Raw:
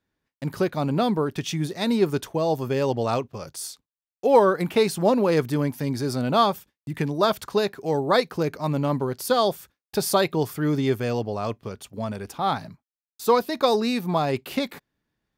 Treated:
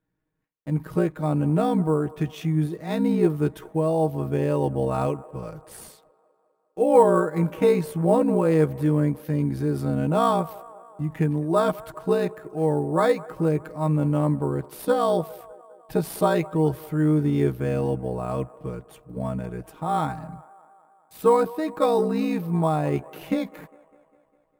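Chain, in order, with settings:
parametric band 5,300 Hz −11 dB 1.5 octaves
on a send: delay with a band-pass on its return 126 ms, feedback 62%, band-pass 860 Hz, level −19 dB
on the sum: time stretch by overlap-add 1.6×, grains 34 ms
in parallel at −8 dB: sample-rate reduction 8,900 Hz, jitter 0%
on the sum: low-shelf EQ 400 Hz +5.5 dB
level −4 dB

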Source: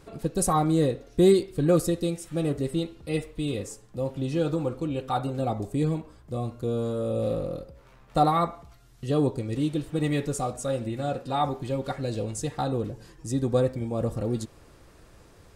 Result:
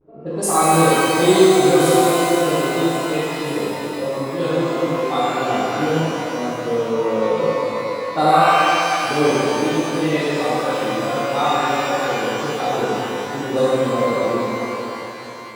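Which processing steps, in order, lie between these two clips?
high-pass filter 180 Hz 12 dB per octave
pitch vibrato 0.53 Hz 48 cents
low-shelf EQ 340 Hz −10.5 dB
low-pass that shuts in the quiet parts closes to 390 Hz, open at −23.5 dBFS
echo through a band-pass that steps 544 ms, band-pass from 4,300 Hz, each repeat 0.7 octaves, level −10 dB
reverb with rising layers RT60 3.4 s, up +12 semitones, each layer −8 dB, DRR −11.5 dB
level +1.5 dB

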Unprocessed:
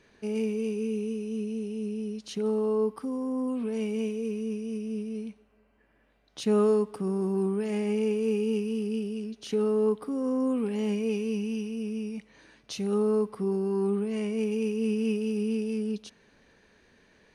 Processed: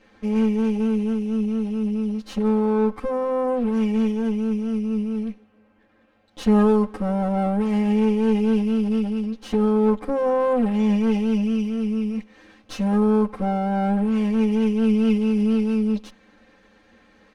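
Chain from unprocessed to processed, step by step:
lower of the sound and its delayed copy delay 9.5 ms
low-pass filter 2,300 Hz 6 dB per octave
comb filter 3.8 ms, depth 78%
level +7 dB

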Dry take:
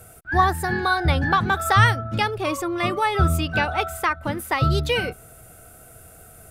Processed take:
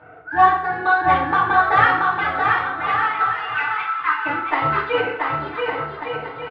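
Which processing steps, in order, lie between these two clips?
0:01.80–0:04.25: Butterworth high-pass 990 Hz 48 dB per octave
low-pass that shuts in the quiet parts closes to 2,300 Hz, open at −15.5 dBFS
noise gate with hold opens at −41 dBFS
upward compression, threshold −31 dBFS
resonant band-pass 1,400 Hz, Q 0.6
harmonic generator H 5 −23 dB, 7 −21 dB, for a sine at −7 dBFS
high-frequency loss of the air 470 metres
bouncing-ball delay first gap 680 ms, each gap 0.7×, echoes 5
feedback delay network reverb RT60 0.67 s, low-frequency decay 0.7×, high-frequency decay 0.8×, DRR −7 dB

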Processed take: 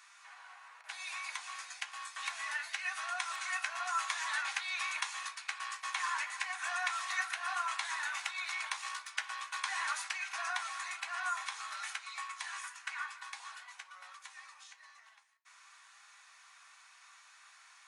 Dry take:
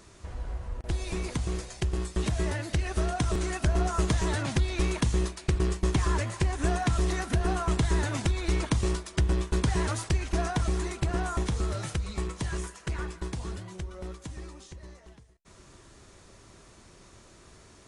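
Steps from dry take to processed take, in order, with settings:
0:07.95–0:09.11: gain on one half-wave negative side −3 dB
Butterworth high-pass 900 Hz 36 dB per octave
convolution reverb RT60 0.25 s, pre-delay 3 ms, DRR 2 dB
level −4.5 dB

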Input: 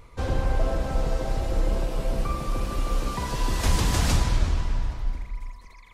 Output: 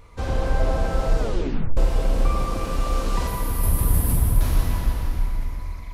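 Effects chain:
0:03.27–0:04.41: drawn EQ curve 110 Hz 0 dB, 6,800 Hz −20 dB, 11,000 Hz +12 dB
dense smooth reverb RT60 3.7 s, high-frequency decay 0.8×, DRR −1 dB
0:01.19: tape stop 0.58 s

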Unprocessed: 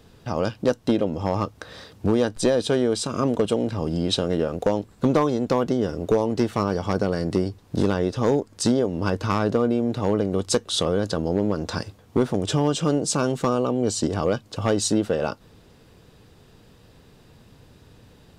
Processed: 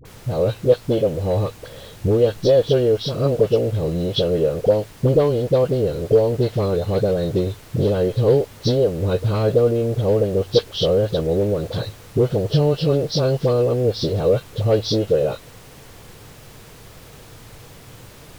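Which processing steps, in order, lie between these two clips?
hearing-aid frequency compression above 2,400 Hz 1.5 to 1
octave-band graphic EQ 125/250/500/1,000/2,000/4,000/8,000 Hz +11/−9/+11/−8/−5/+7/−11 dB
background noise pink −44 dBFS
pitch vibrato 1.3 Hz 41 cents
all-pass dispersion highs, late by 50 ms, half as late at 750 Hz

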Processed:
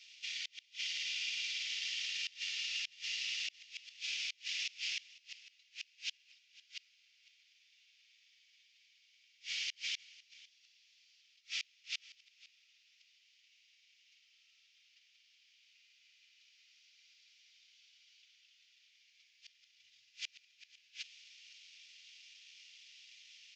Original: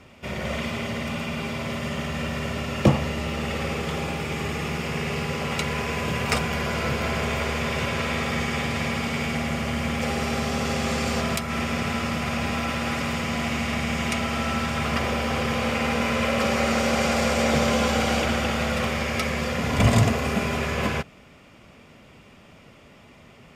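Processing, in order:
variable-slope delta modulation 32 kbit/s
inverse Chebyshev high-pass filter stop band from 1,100 Hz, stop band 50 dB
gate with flip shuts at −29 dBFS, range −33 dB
single-tap delay 503 ms −20.5 dB
level +2 dB

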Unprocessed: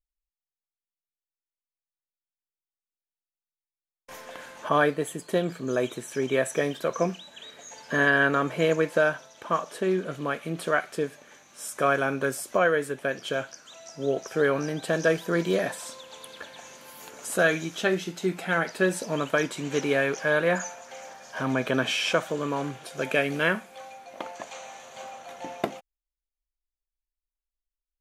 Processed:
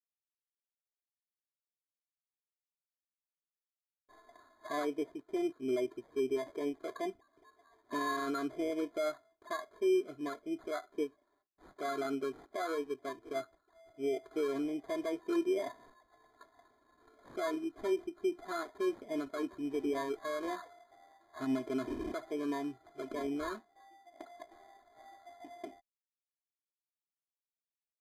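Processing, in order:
noise gate with hold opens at −40 dBFS
high-shelf EQ 3,100 Hz −6.5 dB
comb filter 2.9 ms, depth 87%
decimation without filtering 16×
brickwall limiter −19 dBFS, peak gain reduction 10 dB
downsampling to 32,000 Hz
every bin expanded away from the loudest bin 1.5 to 1
level −5.5 dB

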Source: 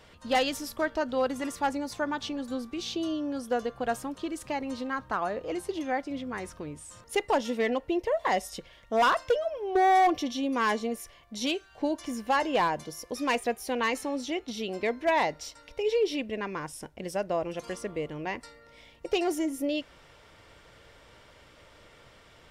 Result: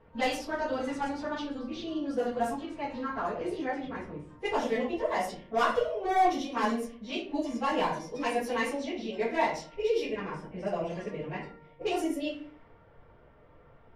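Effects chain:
rectangular room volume 180 cubic metres, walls mixed, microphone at 1.6 metres
time stretch by phase vocoder 0.62×
low-pass that shuts in the quiet parts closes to 1,100 Hz, open at −21 dBFS
level −4.5 dB

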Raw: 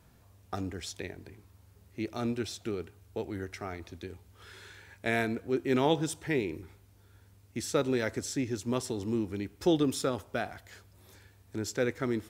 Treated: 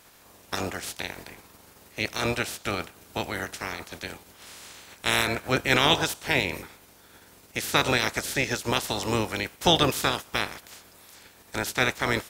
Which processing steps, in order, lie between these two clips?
ceiling on every frequency bin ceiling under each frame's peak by 25 dB
level +5.5 dB

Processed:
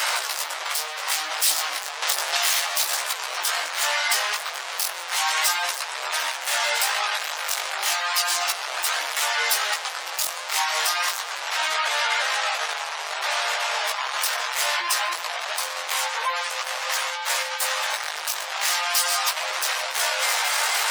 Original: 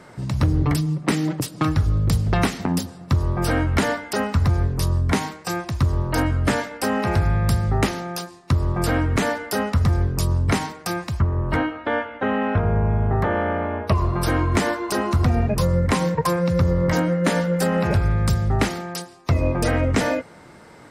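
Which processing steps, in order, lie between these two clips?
sign of each sample alone
high-pass filter 710 Hz 24 dB per octave
gate on every frequency bin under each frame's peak −20 dB strong
high-shelf EQ 2,100 Hz +8 dB
convolution reverb RT60 1.1 s, pre-delay 65 ms, DRR 17.5 dB
multi-voice chorus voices 2, 0.33 Hz, delay 17 ms, depth 4.2 ms
tape delay 146 ms, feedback 74%, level −17.5 dB, low-pass 5,000 Hz
0:02.02–0:02.84: multiband upward and downward compressor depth 100%

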